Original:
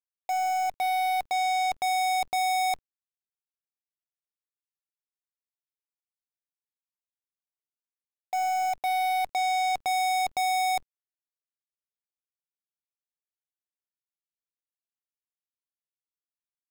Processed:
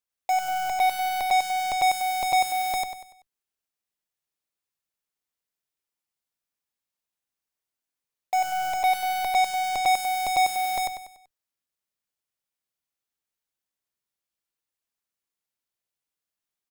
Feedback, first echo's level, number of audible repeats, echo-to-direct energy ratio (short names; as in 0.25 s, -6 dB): 39%, -3.0 dB, 4, -2.5 dB